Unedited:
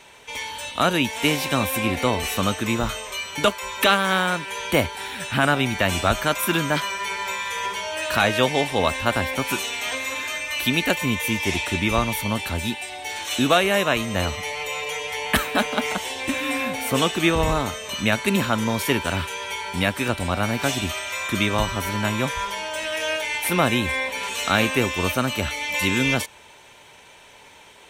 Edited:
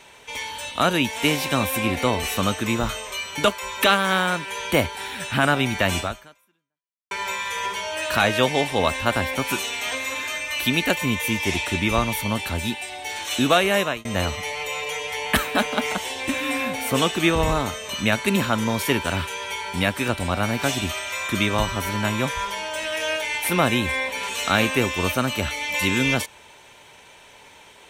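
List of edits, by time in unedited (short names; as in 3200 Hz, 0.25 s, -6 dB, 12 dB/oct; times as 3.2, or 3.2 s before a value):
5.99–7.11 fade out exponential
13.8–14.05 fade out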